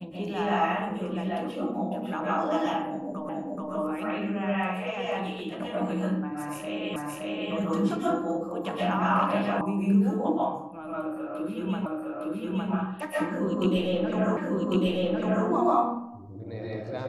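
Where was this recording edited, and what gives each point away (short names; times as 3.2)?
3.29 repeat of the last 0.43 s
6.96 repeat of the last 0.57 s
9.61 sound cut off
11.86 repeat of the last 0.86 s
14.37 repeat of the last 1.1 s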